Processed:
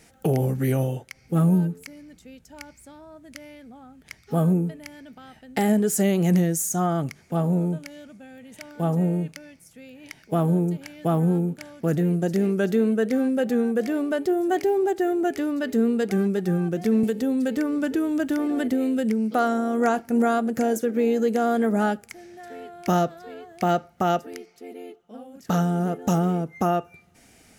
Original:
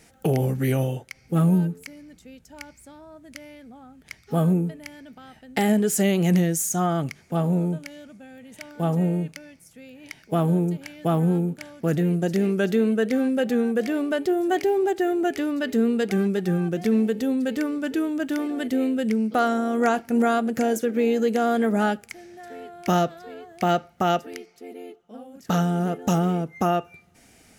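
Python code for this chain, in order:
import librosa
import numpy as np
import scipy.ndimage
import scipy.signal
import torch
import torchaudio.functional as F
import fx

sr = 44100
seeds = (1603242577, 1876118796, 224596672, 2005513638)

y = fx.dynamic_eq(x, sr, hz=2900.0, q=0.95, threshold_db=-44.0, ratio=4.0, max_db=-5)
y = fx.band_squash(y, sr, depth_pct=100, at=(17.03, 19.35))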